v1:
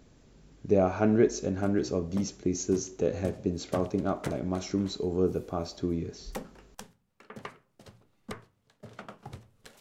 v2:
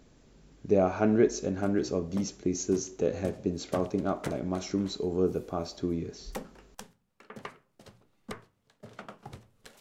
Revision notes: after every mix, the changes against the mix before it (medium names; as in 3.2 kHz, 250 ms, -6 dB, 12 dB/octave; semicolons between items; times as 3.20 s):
master: add peaking EQ 96 Hz -3.5 dB 1.2 oct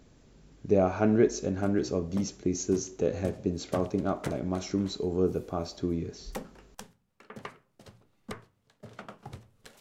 master: add peaking EQ 96 Hz +3.5 dB 1.2 oct